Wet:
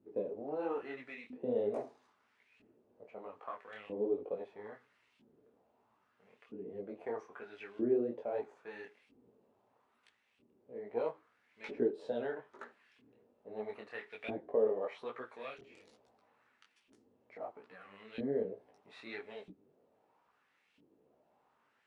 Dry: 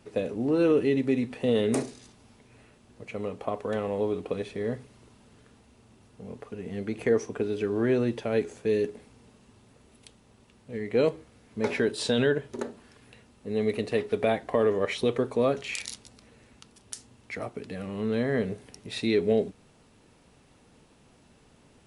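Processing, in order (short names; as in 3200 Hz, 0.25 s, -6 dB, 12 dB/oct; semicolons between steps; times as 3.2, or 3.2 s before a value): half-wave gain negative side -3 dB; LFO band-pass saw up 0.77 Hz 280–2800 Hz; detuned doubles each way 41 cents; gain +1 dB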